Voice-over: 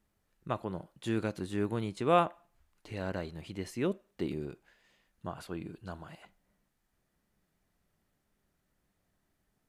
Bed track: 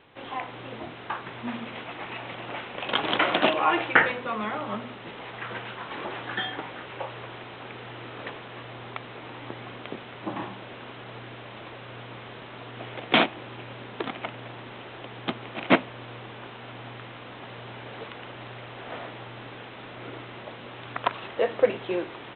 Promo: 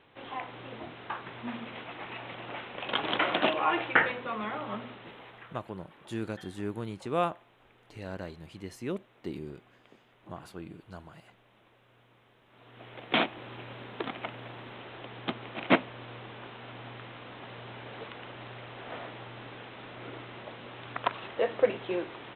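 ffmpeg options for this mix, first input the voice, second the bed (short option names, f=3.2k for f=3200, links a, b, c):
-filter_complex "[0:a]adelay=5050,volume=-3dB[a];[1:a]volume=13.5dB,afade=t=out:st=4.84:d=0.77:silence=0.141254,afade=t=in:st=12.46:d=1.03:silence=0.125893[b];[a][b]amix=inputs=2:normalize=0"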